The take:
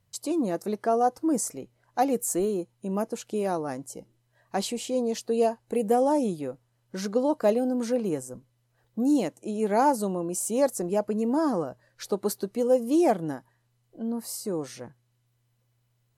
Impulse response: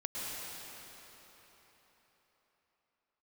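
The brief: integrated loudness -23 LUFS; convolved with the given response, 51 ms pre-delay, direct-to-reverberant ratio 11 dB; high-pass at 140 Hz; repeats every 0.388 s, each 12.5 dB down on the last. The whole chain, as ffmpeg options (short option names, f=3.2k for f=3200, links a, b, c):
-filter_complex "[0:a]highpass=140,aecho=1:1:388|776|1164:0.237|0.0569|0.0137,asplit=2[a][b];[1:a]atrim=start_sample=2205,adelay=51[c];[b][c]afir=irnorm=-1:irlink=0,volume=-15dB[d];[a][d]amix=inputs=2:normalize=0,volume=4dB"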